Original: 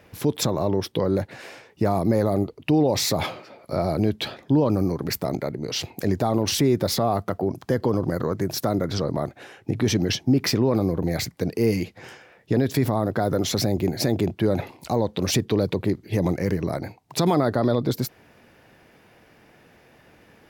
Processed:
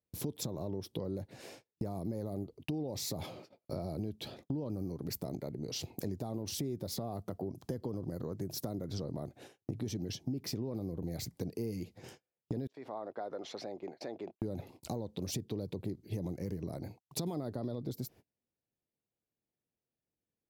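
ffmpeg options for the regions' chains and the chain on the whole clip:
ffmpeg -i in.wav -filter_complex "[0:a]asettb=1/sr,asplit=3[link_01][link_02][link_03];[link_01]atrim=end=12.674[link_04];[link_02]atrim=start=12.67:end=14.42,asetpts=PTS-STARTPTS,afade=type=in:duration=0.004:curve=qsin,afade=type=out:start_time=1.746:duration=0.004:curve=qsin,agate=range=-9dB:threshold=-29dB:ratio=16:release=100:detection=peak,highpass=730,lowpass=2100[link_05];[link_03]atrim=start=14.416[link_06];[link_04][link_05]acrossfade=duration=0.004:curve1=hsin:curve2=qsin[link_07];[link_07][link_06]acrossfade=duration=0.004:curve1=qsin:curve2=hsin,agate=range=-35dB:threshold=-42dB:ratio=16:detection=peak,equalizer=frequency=1600:width=0.6:gain=-13,acompressor=threshold=-34dB:ratio=4,volume=-2.5dB" out.wav

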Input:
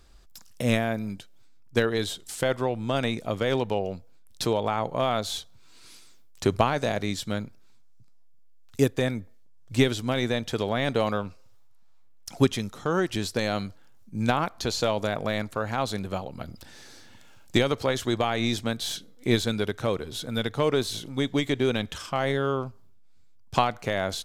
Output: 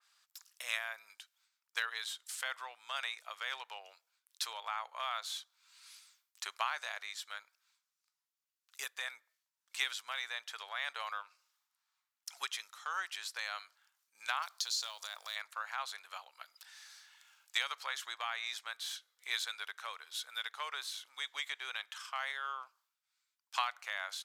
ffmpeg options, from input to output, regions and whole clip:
ffmpeg -i in.wav -filter_complex "[0:a]asettb=1/sr,asplit=3[link_01][link_02][link_03];[link_01]atrim=end=14.424[link_04];[link_02]atrim=start=14.42:end=15.36,asetpts=PTS-STARTPTS,afade=type=in:duration=0.004:curve=qsin,afade=type=out:start_time=0.936:duration=0.004:curve=qsin,highshelf=frequency=3200:width_type=q:width=1.5:gain=10.5,acompressor=threshold=-30dB:ratio=2:attack=3.2:release=140:knee=1:detection=peak,acrusher=bits=7:mode=log:mix=0:aa=0.000001[link_05];[link_03]atrim=start=15.356[link_06];[link_04][link_05]acrossfade=duration=0.004:curve1=hsin:curve2=qsin[link_07];[link_07][link_06]acrossfade=duration=0.004:curve1=qsin:curve2=hsin,highpass=frequency=1100:width=0.5412,highpass=frequency=1100:width=1.3066,adynamicequalizer=threshold=0.00708:dfrequency=2400:dqfactor=0.7:tfrequency=2400:tqfactor=0.7:attack=5:release=100:ratio=0.375:range=3:mode=cutabove:tftype=highshelf,volume=-5dB" out.wav

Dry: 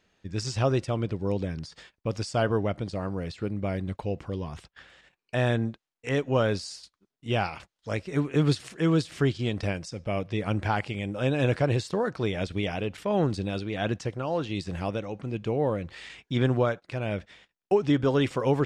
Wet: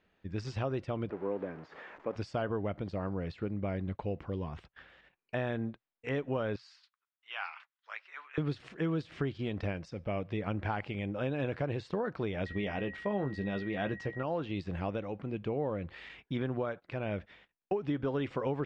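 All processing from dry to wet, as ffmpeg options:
ffmpeg -i in.wav -filter_complex "[0:a]asettb=1/sr,asplit=3[link_01][link_02][link_03];[link_01]atrim=end=1.104[link_04];[link_02]atrim=start=1.1:end=2.16,asetpts=PTS-STARTPTS,afade=type=in:duration=0.004:curve=qsin,afade=type=out:start_time=1.056:duration=0.004:curve=qsin,aeval=exprs='val(0)+0.5*0.0158*sgn(val(0))':channel_layout=same,lowpass=frequency=7000:width_type=q:width=2.4,acrossover=split=240 2100:gain=0.0631 1 0.0631[link_05][link_06][link_07];[link_05][link_06][link_07]amix=inputs=3:normalize=0[link_08];[link_03]atrim=start=2.156[link_09];[link_04][link_08]acrossfade=duration=0.004:curve1=hsin:curve2=qsin[link_10];[link_10][link_09]acrossfade=duration=0.004:curve1=qsin:curve2=hsin,asettb=1/sr,asplit=3[link_11][link_12][link_13];[link_11]atrim=end=6.564[link_14];[link_12]atrim=start=6.56:end=8.38,asetpts=PTS-STARTPTS,afade=type=in:duration=0.004:curve=qsin,afade=type=out:start_time=1.816:duration=0.004:curve=qsin,highpass=frequency=1100:width=0.5412,highpass=frequency=1100:width=1.3066,aemphasis=mode=reproduction:type=50fm[link_15];[link_13]atrim=start=8.376[link_16];[link_14][link_15]acrossfade=duration=0.004:curve1=hsin:curve2=qsin[link_17];[link_17][link_16]acrossfade=duration=0.004:curve1=qsin:curve2=hsin,asettb=1/sr,asplit=3[link_18][link_19][link_20];[link_18]atrim=end=12.464[link_21];[link_19]atrim=start=12.46:end=14.23,asetpts=PTS-STARTPTS,afade=type=in:duration=0.004:curve=qsin,afade=type=out:start_time=1.766:duration=0.004:curve=qsin,aeval=exprs='val(0)+0.0158*sin(2*PI*1900*n/s)':channel_layout=same,asplit=2[link_22][link_23];[link_23]adelay=15,volume=-8dB[link_24];[link_22][link_24]amix=inputs=2:normalize=0,atrim=end_sample=78057[link_25];[link_20]atrim=start=14.226[link_26];[link_21][link_25]acrossfade=duration=0.004:curve1=hsin:curve2=qsin[link_27];[link_27][link_26]acrossfade=duration=0.004:curve1=qsin:curve2=hsin,acompressor=threshold=-26dB:ratio=6,lowpass=2800,equalizer=frequency=120:width=6.7:gain=-5,volume=-3dB" out.wav

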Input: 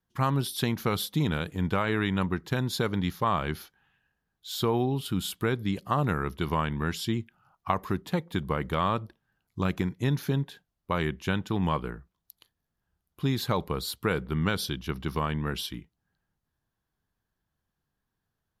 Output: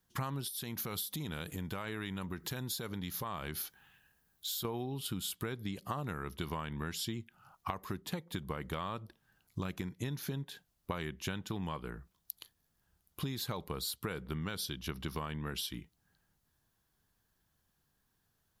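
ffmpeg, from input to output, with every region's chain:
ffmpeg -i in.wav -filter_complex "[0:a]asettb=1/sr,asplit=3[link_01][link_02][link_03];[link_01]atrim=end=0.484[link_04];[link_02]atrim=start=0.48:end=4.65,asetpts=PTS-STARTPTS,afade=type=in:duration=0.004:curve=qsin,afade=type=out:start_time=4.166:duration=0.004:curve=qsin,highshelf=frequency=11000:gain=11,acompressor=threshold=-43dB:ratio=2.5:attack=3.2:release=140:knee=1:detection=peak[link_05];[link_03]atrim=start=4.646[link_06];[link_04][link_05]acrossfade=duration=0.004:curve1=hsin:curve2=qsin[link_07];[link_07][link_06]acrossfade=duration=0.004:curve1=qsin:curve2=hsin,highshelf=frequency=3700:gain=8.5,acompressor=threshold=-38dB:ratio=10,volume=3dB" out.wav

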